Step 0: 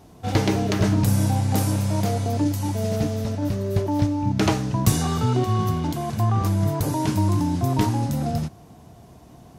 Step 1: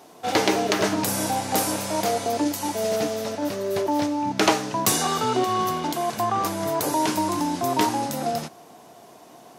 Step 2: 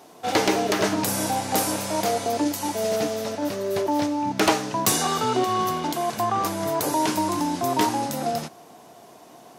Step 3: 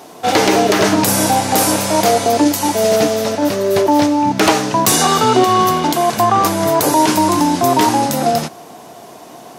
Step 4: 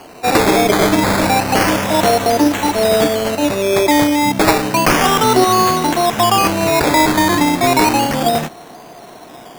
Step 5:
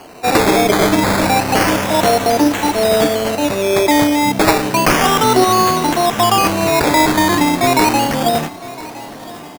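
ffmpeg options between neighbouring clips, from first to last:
ffmpeg -i in.wav -af "highpass=410,volume=5.5dB" out.wav
ffmpeg -i in.wav -af "aeval=exprs='0.376*(abs(mod(val(0)/0.376+3,4)-2)-1)':channel_layout=same" out.wav
ffmpeg -i in.wav -af "alimiter=level_in=12dB:limit=-1dB:release=50:level=0:latency=1,volume=-1dB" out.wav
ffmpeg -i in.wav -af "acrusher=samples=12:mix=1:aa=0.000001:lfo=1:lforange=7.2:lforate=0.31" out.wav
ffmpeg -i in.wav -af "aecho=1:1:1011|2022|3033|4044:0.119|0.0594|0.0297|0.0149" out.wav

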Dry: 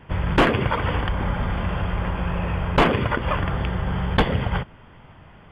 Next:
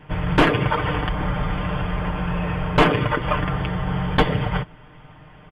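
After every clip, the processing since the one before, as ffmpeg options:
ffmpeg -i in.wav -af "aecho=1:1:6.6:0.65" out.wav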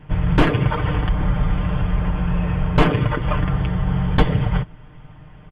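ffmpeg -i in.wav -af "lowshelf=frequency=200:gain=11,volume=-3.5dB" out.wav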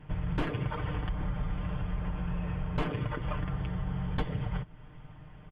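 ffmpeg -i in.wav -af "acompressor=threshold=-27dB:ratio=2,volume=-7dB" out.wav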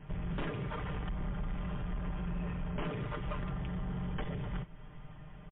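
ffmpeg -i in.wav -af "asoftclip=type=tanh:threshold=-32dB,aecho=1:1:5:0.33" -ar 8000 -c:a libmp3lame -b:a 24k out.mp3

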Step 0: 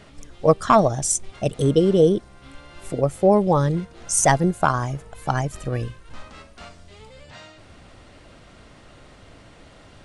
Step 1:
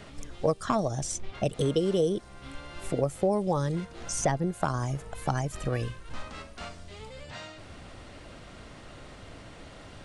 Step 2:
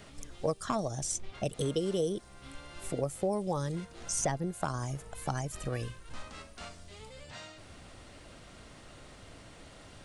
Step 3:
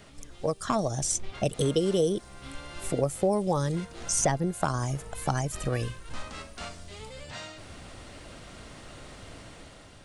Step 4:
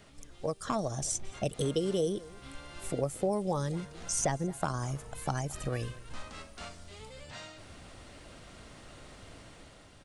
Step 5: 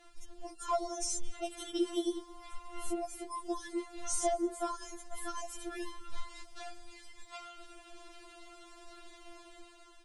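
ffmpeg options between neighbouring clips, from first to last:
ffmpeg -i in.wav -filter_complex "[0:a]acrossover=split=540|5000[link_01][link_02][link_03];[link_01]acompressor=threshold=-29dB:ratio=4[link_04];[link_02]acompressor=threshold=-32dB:ratio=4[link_05];[link_03]acompressor=threshold=-46dB:ratio=4[link_06];[link_04][link_05][link_06]amix=inputs=3:normalize=0,volume=1dB" out.wav
ffmpeg -i in.wav -af "highshelf=frequency=6200:gain=9.5,volume=-5.5dB" out.wav
ffmpeg -i in.wav -af "dynaudnorm=framelen=130:gausssize=9:maxgain=6dB" out.wav
ffmpeg -i in.wav -filter_complex "[0:a]asplit=2[link_01][link_02];[link_02]adelay=221.6,volume=-20dB,highshelf=frequency=4000:gain=-4.99[link_03];[link_01][link_03]amix=inputs=2:normalize=0,volume=-5dB" out.wav
ffmpeg -i in.wav -af "afftfilt=real='re*4*eq(mod(b,16),0)':imag='im*4*eq(mod(b,16),0)':win_size=2048:overlap=0.75" out.wav

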